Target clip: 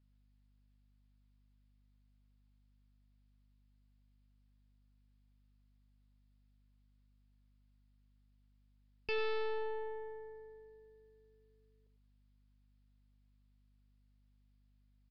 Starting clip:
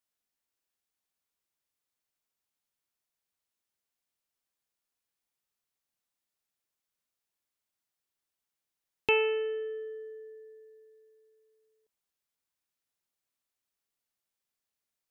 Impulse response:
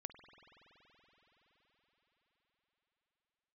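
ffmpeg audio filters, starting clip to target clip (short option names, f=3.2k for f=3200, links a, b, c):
-filter_complex "[0:a]aeval=exprs='(tanh(70.8*val(0)+0.65)-tanh(0.65))/70.8':c=same,aeval=exprs='val(0)+0.000224*(sin(2*PI*50*n/s)+sin(2*PI*2*50*n/s)/2+sin(2*PI*3*50*n/s)/3+sin(2*PI*4*50*n/s)/4+sin(2*PI*5*50*n/s)/5)':c=same,asplit=2[a][b];[b]aecho=0:1:97:0.266[c];[a][c]amix=inputs=2:normalize=0,aresample=11025,aresample=44100,volume=3.5dB"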